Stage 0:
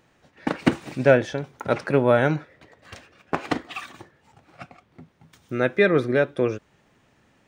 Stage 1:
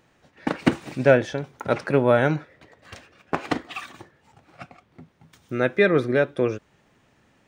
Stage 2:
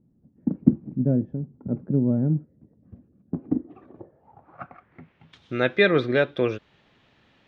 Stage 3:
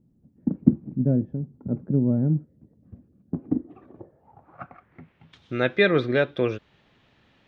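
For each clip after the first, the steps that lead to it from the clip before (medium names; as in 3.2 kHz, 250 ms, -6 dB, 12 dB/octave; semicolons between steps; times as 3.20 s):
no audible change
low-pass sweep 220 Hz -> 3.7 kHz, 3.42–5.38 s; trim -1 dB
bass shelf 140 Hz +3.5 dB; trim -1 dB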